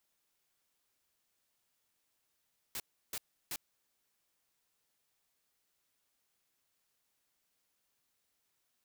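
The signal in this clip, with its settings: noise bursts white, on 0.05 s, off 0.33 s, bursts 3, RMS -39.5 dBFS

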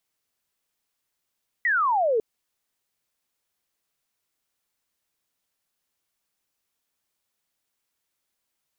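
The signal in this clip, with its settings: laser zap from 2 kHz, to 420 Hz, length 0.55 s sine, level -19 dB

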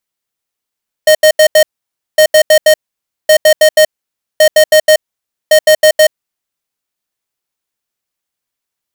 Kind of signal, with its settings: beep pattern square 619 Hz, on 0.08 s, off 0.08 s, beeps 4, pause 0.55 s, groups 5, -5 dBFS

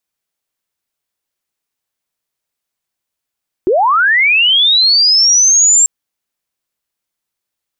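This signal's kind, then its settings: sweep linear 330 Hz -> 7.5 kHz -8 dBFS -> -5.5 dBFS 2.19 s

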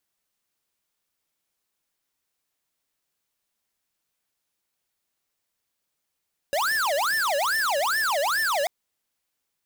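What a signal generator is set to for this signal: siren wail 555–1790 Hz 2.4 per s square -24 dBFS 2.14 s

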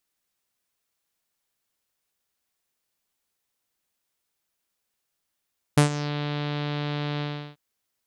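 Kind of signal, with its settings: synth note saw D3 24 dB/octave, low-pass 3.9 kHz, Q 2.4, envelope 1.5 oct, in 0.34 s, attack 8.4 ms, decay 0.11 s, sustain -14.5 dB, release 0.35 s, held 1.44 s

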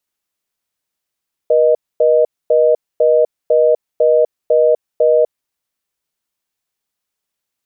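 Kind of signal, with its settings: call progress tone reorder tone, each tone -11 dBFS 3.80 s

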